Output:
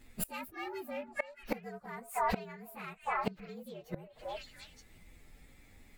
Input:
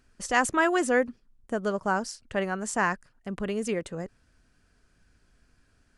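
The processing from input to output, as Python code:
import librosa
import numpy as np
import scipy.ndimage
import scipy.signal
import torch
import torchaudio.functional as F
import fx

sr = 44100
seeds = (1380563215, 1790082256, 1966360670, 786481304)

p1 = fx.partial_stretch(x, sr, pct=117)
p2 = np.clip(10.0 ** (25.5 / 20.0) * p1, -1.0, 1.0) / 10.0 ** (25.5 / 20.0)
p3 = p1 + (p2 * librosa.db_to_amplitude(-5.5))
p4 = fx.echo_stepped(p3, sr, ms=308, hz=810.0, octaves=1.4, feedback_pct=70, wet_db=-7.5)
p5 = fx.gate_flip(p4, sr, shuts_db=-26.0, range_db=-25)
y = p5 * librosa.db_to_amplitude(6.5)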